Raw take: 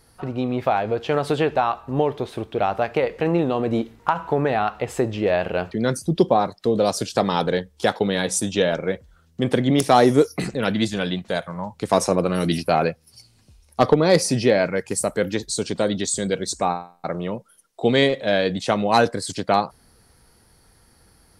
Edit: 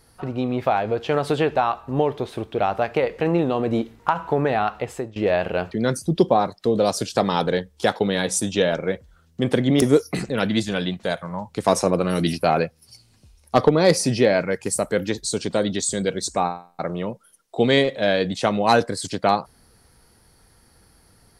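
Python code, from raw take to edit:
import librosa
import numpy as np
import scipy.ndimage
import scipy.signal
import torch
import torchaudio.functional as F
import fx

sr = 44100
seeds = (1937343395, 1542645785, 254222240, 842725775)

y = fx.edit(x, sr, fx.fade_out_to(start_s=4.76, length_s=0.4, floor_db=-20.5),
    fx.cut(start_s=9.82, length_s=0.25), tone=tone)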